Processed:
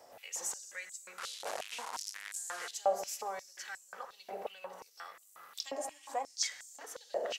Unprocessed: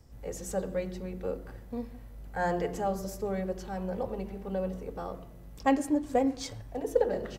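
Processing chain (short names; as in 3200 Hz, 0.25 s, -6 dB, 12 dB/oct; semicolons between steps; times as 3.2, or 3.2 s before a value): 1.18–2.71 delta modulation 64 kbps, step -36 dBFS; dynamic EQ 6900 Hz, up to +6 dB, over -59 dBFS, Q 1.4; compressor 4:1, threshold -40 dBFS, peak gain reduction 17.5 dB; Schroeder reverb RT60 3.3 s, combs from 31 ms, DRR 14.5 dB; stepped high-pass 5.6 Hz 650–7600 Hz; gain +6 dB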